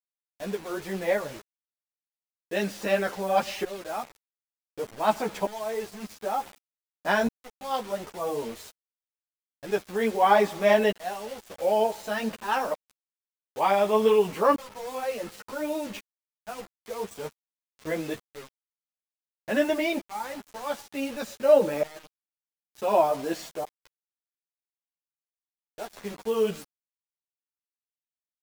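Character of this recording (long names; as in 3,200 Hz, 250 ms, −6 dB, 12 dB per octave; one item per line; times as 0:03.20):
tremolo saw up 0.55 Hz, depth 95%
a quantiser's noise floor 8 bits, dither none
a shimmering, thickened sound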